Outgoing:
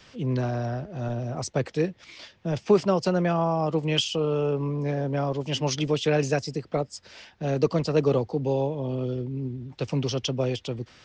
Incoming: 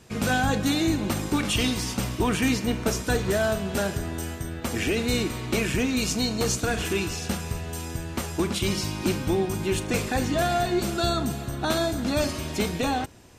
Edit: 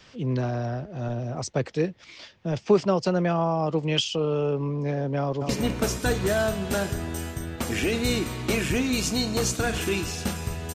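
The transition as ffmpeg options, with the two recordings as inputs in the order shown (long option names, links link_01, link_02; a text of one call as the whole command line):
ffmpeg -i cue0.wav -i cue1.wav -filter_complex "[0:a]apad=whole_dur=10.74,atrim=end=10.74,atrim=end=5.492[link_01];[1:a]atrim=start=2.528:end=7.78[link_02];[link_01][link_02]acrossfade=duration=0.004:curve1=hsin:curve2=hsin,asplit=2[link_03][link_04];[link_04]afade=type=in:start_time=5.2:duration=0.01,afade=type=out:start_time=5.49:duration=0.01,aecho=0:1:210|420|630|840|1050|1260:0.562341|0.253054|0.113874|0.0512434|0.0230595|0.0103768[link_05];[link_03][link_05]amix=inputs=2:normalize=0" out.wav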